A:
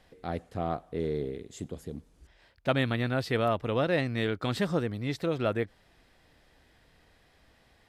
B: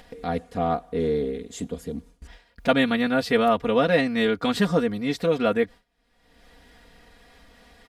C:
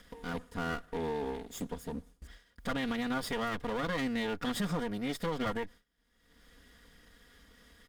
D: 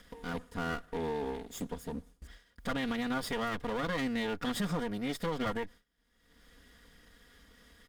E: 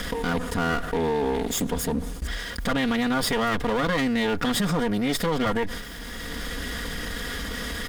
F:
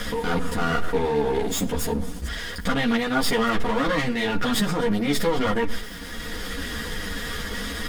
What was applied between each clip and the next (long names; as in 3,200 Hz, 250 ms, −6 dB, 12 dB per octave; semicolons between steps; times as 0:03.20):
noise gate with hold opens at −49 dBFS; comb filter 4.2 ms, depth 88%; upward compression, threshold −37 dBFS; level +4.5 dB
lower of the sound and its delayed copy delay 0.58 ms; brickwall limiter −19.5 dBFS, peak gain reduction 10 dB; high-shelf EQ 8,600 Hz +5 dB; level −5.5 dB
no processing that can be heard
envelope flattener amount 70%; level +7.5 dB
stylus tracing distortion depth 0.024 ms; convolution reverb RT60 0.70 s, pre-delay 6 ms, DRR 13 dB; string-ensemble chorus; level +4 dB